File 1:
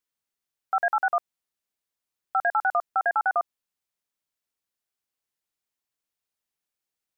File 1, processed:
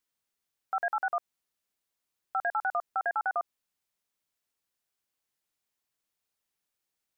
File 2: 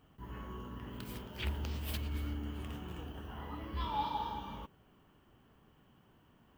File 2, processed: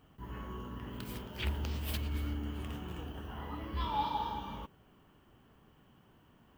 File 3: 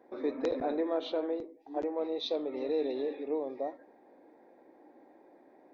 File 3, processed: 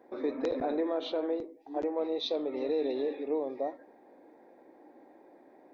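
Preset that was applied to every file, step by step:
brickwall limiter −24 dBFS
level +2 dB

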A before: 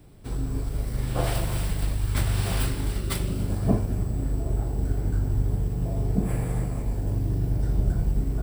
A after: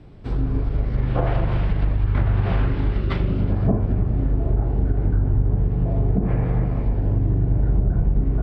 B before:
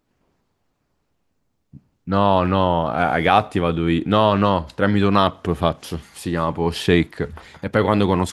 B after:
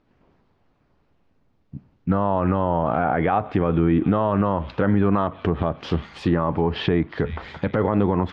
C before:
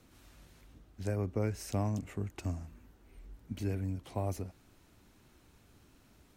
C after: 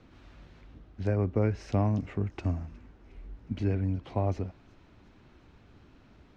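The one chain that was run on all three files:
delay with a high-pass on its return 361 ms, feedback 63%, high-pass 2,100 Hz, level −21 dB
downward compressor 6 to 1, threshold −19 dBFS
treble cut that deepens with the level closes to 1,600 Hz, closed at −20 dBFS
high-frequency loss of the air 210 metres
brickwall limiter −15.5 dBFS
level +6.5 dB

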